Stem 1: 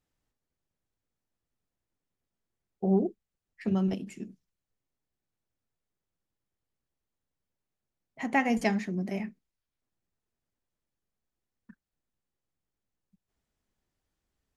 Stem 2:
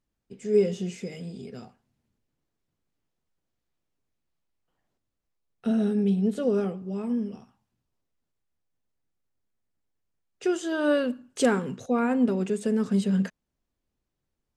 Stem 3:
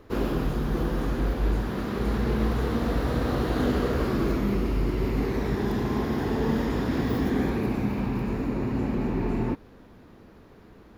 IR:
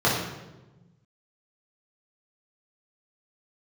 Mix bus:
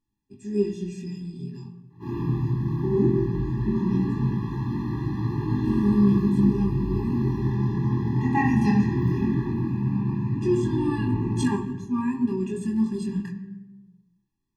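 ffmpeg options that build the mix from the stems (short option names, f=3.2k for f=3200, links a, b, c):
-filter_complex "[0:a]lowshelf=f=400:g=-9.5,agate=range=-7dB:threshold=-45dB:ratio=16:detection=peak,equalizer=f=280:t=o:w=1.2:g=11.5,volume=0dB,asplit=2[a][b];[b]volume=-12.5dB[c];[1:a]tremolo=f=130:d=0.182,volume=2dB,asplit=3[d][e][f];[e]volume=-23.5dB[g];[2:a]adelay=1900,volume=-9dB,asplit=2[h][i];[i]volume=-9.5dB[j];[f]apad=whole_len=567783[k];[h][k]sidechaingate=range=-33dB:threshold=-56dB:ratio=16:detection=peak[l];[3:a]atrim=start_sample=2205[m];[c][g][j]amix=inputs=3:normalize=0[n];[n][m]afir=irnorm=-1:irlink=0[o];[a][d][l][o]amix=inputs=4:normalize=0,equalizer=f=120:w=2.5:g=4,flanger=delay=19.5:depth=4.4:speed=0.18,afftfilt=real='re*eq(mod(floor(b*sr/1024/400),2),0)':imag='im*eq(mod(floor(b*sr/1024/400),2),0)':win_size=1024:overlap=0.75"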